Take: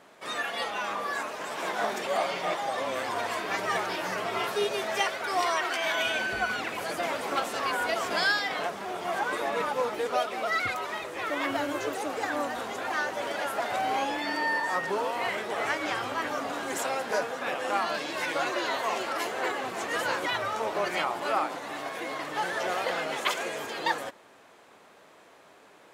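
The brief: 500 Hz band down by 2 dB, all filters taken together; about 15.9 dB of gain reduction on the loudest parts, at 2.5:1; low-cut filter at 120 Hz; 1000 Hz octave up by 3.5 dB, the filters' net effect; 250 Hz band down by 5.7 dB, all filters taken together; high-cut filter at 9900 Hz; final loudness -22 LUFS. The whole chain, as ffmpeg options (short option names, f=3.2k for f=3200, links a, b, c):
-af "highpass=120,lowpass=9.9k,equalizer=f=250:t=o:g=-6.5,equalizer=f=500:t=o:g=-3.5,equalizer=f=1k:t=o:g=6,acompressor=threshold=-45dB:ratio=2.5,volume=19dB"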